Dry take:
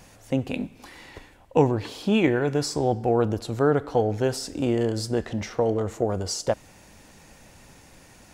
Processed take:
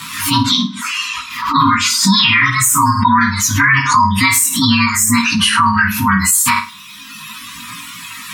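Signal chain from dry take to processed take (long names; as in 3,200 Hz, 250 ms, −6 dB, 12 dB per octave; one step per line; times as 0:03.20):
partials spread apart or drawn together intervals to 116%
hum removal 216.4 Hz, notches 3
brick-wall band-stop 290–920 Hz
meter weighting curve A
gate on every frequency bin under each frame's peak −30 dB strong
dynamic equaliser 260 Hz, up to −5 dB, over −50 dBFS, Q 2.1
reversed playback
upward compression, threshold −54 dBFS
reversed playback
reverb reduction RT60 1.9 s
multi-voice chorus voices 2, 0.39 Hz, delay 19 ms, depth 2 ms
on a send: flutter between parallel walls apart 8.8 metres, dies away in 0.3 s
on the sum: boost into a limiter +36 dB
background raised ahead of every attack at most 69 dB per second
level −2 dB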